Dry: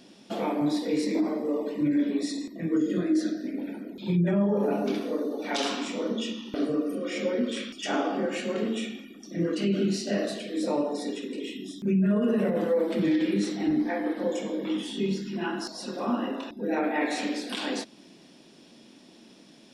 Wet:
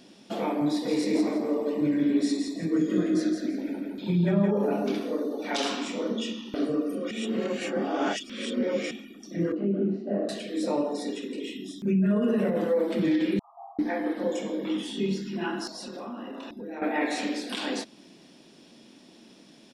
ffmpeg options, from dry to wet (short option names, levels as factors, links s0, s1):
-filter_complex "[0:a]asplit=3[s0][s1][s2];[s0]afade=t=out:st=0.84:d=0.02[s3];[s1]aecho=1:1:167|334|501|668:0.596|0.167|0.0467|0.0131,afade=t=in:st=0.84:d=0.02,afade=t=out:st=4.5:d=0.02[s4];[s2]afade=t=in:st=4.5:d=0.02[s5];[s3][s4][s5]amix=inputs=3:normalize=0,asettb=1/sr,asplit=3[s6][s7][s8];[s6]atrim=end=9.524[s9];[s7]atrim=start=9.52:end=10.29,asetpts=PTS-STARTPTS,afade=t=in:d=0.004:c=qsin,afade=t=out:st=0.766:d=0.004:c=qsin,asuperpass=centerf=400:order=4:qfactor=0.51[s10];[s8]atrim=start=10.286[s11];[s9][s10]acrossfade=d=0.004:c1=hsin:c2=qsin[s12];[s12][s11]acrossfade=d=0.004:c1=qsin:c2=hsin,asettb=1/sr,asplit=3[s13][s14][s15];[s13]atrim=end=13.394[s16];[s14]atrim=start=13.39:end=13.79,asetpts=PTS-STARTPTS,afade=t=in:d=0.004:c=qsin,afade=t=out:st=0.396:d=0.004:c=qsin,asuperpass=centerf=910:order=20:qfactor=1.6[s17];[s15]atrim=start=13.786[s18];[s16][s17]acrossfade=d=0.004:c1=hsin:c2=qsin[s19];[s19][s18]acrossfade=d=0.004:c1=qsin:c2=hsin,asettb=1/sr,asplit=3[s20][s21][s22];[s20]atrim=end=15.694[s23];[s21]atrim=start=15.69:end=16.82,asetpts=PTS-STARTPTS,afade=t=in:d=0.004:c=qsin,afade=t=out:st=1.126:d=0.004:c=qsin,acompressor=threshold=0.0178:ratio=5:attack=3.2:release=140:knee=1:detection=peak[s24];[s22]atrim=start=16.816[s25];[s23][s24]acrossfade=d=0.004:c1=hsin:c2=qsin[s26];[s26][s25]acrossfade=d=0.004:c1=qsin:c2=hsin,asplit=3[s27][s28][s29];[s27]atrim=end=7.112[s30];[s28]atrim=start=7.108:end=8.912,asetpts=PTS-STARTPTS,areverse[s31];[s29]atrim=start=8.908[s32];[s30][s31]acrossfade=d=0.004:c1=hsin:c2=hsin[s33];[s33][s32]acrossfade=d=0.004:c1=hsin:c2=hsin"